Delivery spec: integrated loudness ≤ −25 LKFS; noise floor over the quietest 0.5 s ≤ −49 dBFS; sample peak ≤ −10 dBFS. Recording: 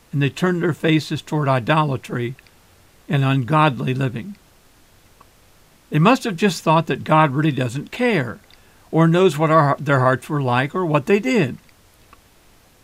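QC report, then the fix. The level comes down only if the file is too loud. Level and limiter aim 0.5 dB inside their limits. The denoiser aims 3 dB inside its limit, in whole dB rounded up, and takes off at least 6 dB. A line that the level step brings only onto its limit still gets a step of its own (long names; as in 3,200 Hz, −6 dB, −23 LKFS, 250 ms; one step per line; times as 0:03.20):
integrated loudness −18.5 LKFS: out of spec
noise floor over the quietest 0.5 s −52 dBFS: in spec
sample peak −3.0 dBFS: out of spec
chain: level −7 dB
brickwall limiter −10.5 dBFS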